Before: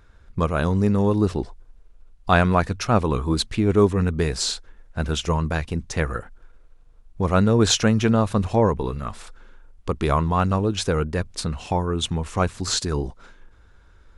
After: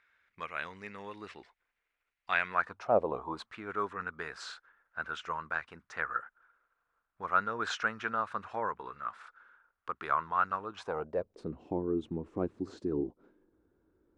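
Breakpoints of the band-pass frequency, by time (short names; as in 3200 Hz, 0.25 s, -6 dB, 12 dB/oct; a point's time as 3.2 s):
band-pass, Q 3.4
2.47 s 2100 Hz
2.98 s 540 Hz
3.6 s 1400 Hz
10.6 s 1400 Hz
11.54 s 320 Hz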